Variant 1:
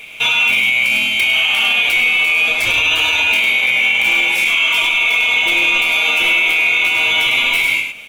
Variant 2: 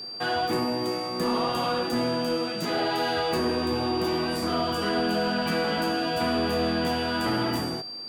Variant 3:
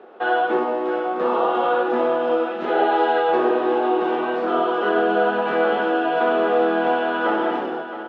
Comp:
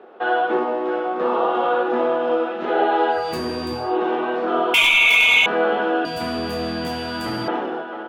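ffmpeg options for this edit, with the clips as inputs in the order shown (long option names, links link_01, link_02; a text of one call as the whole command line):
ffmpeg -i take0.wav -i take1.wav -i take2.wav -filter_complex "[1:a]asplit=2[link_01][link_02];[2:a]asplit=4[link_03][link_04][link_05][link_06];[link_03]atrim=end=3.33[link_07];[link_01]atrim=start=3.09:end=3.97[link_08];[link_04]atrim=start=3.73:end=4.742[link_09];[0:a]atrim=start=4.738:end=5.462[link_10];[link_05]atrim=start=5.458:end=6.052[link_11];[link_02]atrim=start=6.048:end=7.482[link_12];[link_06]atrim=start=7.478[link_13];[link_07][link_08]acrossfade=duration=0.24:curve1=tri:curve2=tri[link_14];[link_14][link_09]acrossfade=duration=0.24:curve1=tri:curve2=tri[link_15];[link_15][link_10]acrossfade=duration=0.004:curve1=hsin:curve2=hsin[link_16];[link_16][link_11]acrossfade=duration=0.004:curve1=hsin:curve2=hsin[link_17];[link_17][link_12]acrossfade=duration=0.004:curve1=hsin:curve2=hsin[link_18];[link_18][link_13]acrossfade=duration=0.004:curve1=hsin:curve2=hsin" out.wav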